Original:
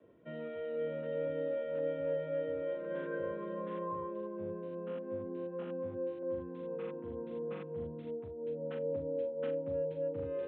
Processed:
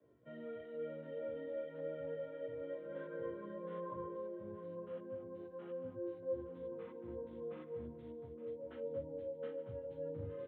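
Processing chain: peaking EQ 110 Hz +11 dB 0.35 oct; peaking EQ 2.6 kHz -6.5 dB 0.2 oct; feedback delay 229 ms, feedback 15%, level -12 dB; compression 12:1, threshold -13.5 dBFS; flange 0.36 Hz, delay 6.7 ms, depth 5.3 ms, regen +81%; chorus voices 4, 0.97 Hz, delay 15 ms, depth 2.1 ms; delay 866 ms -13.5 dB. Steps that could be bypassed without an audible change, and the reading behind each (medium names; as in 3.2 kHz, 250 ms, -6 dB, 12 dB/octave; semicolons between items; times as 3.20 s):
compression, threshold -13.5 dBFS: peak at its input -25.0 dBFS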